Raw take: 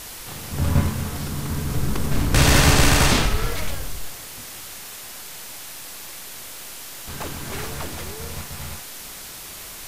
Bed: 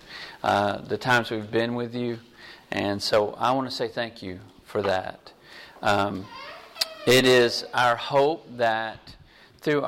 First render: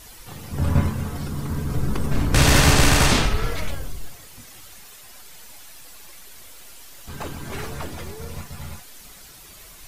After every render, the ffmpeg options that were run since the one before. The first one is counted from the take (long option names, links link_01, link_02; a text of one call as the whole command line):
ffmpeg -i in.wav -af "afftdn=noise_reduction=10:noise_floor=-37" out.wav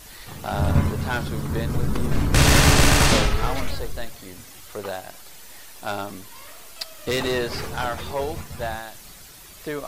ffmpeg -i in.wav -i bed.wav -filter_complex "[1:a]volume=-7dB[link_01];[0:a][link_01]amix=inputs=2:normalize=0" out.wav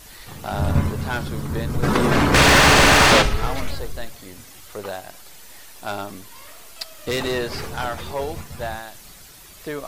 ffmpeg -i in.wav -filter_complex "[0:a]asplit=3[link_01][link_02][link_03];[link_01]afade=type=out:start_time=1.82:duration=0.02[link_04];[link_02]asplit=2[link_05][link_06];[link_06]highpass=frequency=720:poles=1,volume=24dB,asoftclip=type=tanh:threshold=-3dB[link_07];[link_05][link_07]amix=inputs=2:normalize=0,lowpass=frequency=2300:poles=1,volume=-6dB,afade=type=in:start_time=1.82:duration=0.02,afade=type=out:start_time=3.21:duration=0.02[link_08];[link_03]afade=type=in:start_time=3.21:duration=0.02[link_09];[link_04][link_08][link_09]amix=inputs=3:normalize=0" out.wav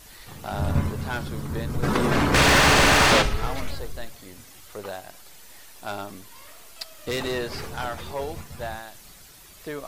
ffmpeg -i in.wav -af "volume=-4dB" out.wav